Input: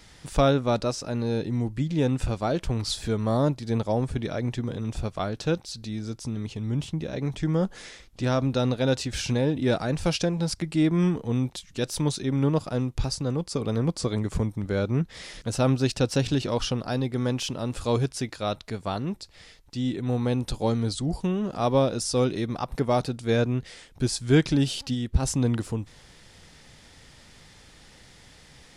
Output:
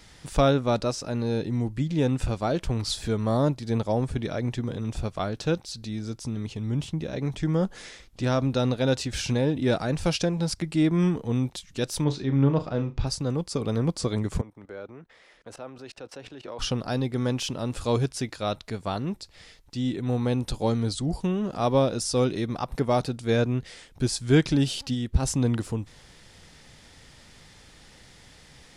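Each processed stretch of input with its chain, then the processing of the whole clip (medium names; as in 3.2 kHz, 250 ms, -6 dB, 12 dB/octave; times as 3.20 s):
12.04–13.07 s: distance through air 160 m + doubling 14 ms -13.5 dB + flutter echo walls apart 6.3 m, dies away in 0.21 s
14.41–16.59 s: level held to a coarse grid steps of 17 dB + three-band isolator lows -16 dB, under 330 Hz, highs -13 dB, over 2.6 kHz
whole clip: none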